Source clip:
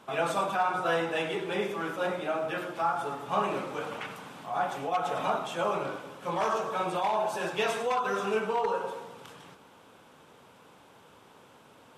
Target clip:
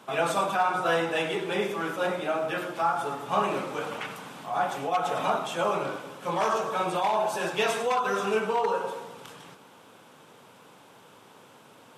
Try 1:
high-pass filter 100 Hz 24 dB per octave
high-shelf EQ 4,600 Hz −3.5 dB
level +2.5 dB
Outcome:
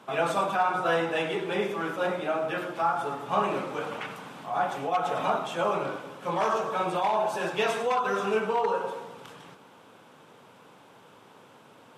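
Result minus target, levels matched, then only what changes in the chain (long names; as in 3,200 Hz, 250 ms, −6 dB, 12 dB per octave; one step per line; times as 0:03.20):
8,000 Hz band −4.5 dB
change: high-shelf EQ 4,600 Hz +3.5 dB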